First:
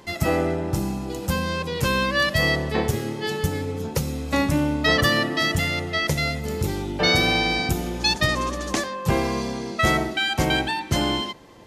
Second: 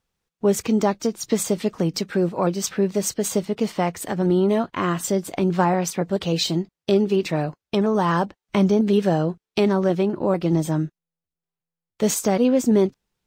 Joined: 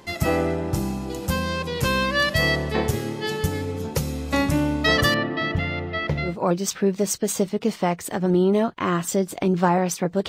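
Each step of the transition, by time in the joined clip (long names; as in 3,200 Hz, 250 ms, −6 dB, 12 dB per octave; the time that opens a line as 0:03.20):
first
0:05.14–0:06.37: high-frequency loss of the air 340 metres
0:06.29: continue with second from 0:02.25, crossfade 0.16 s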